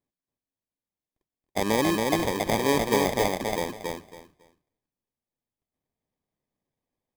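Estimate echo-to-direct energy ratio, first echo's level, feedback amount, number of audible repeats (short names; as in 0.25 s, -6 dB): -3.0 dB, -3.0 dB, 21%, 3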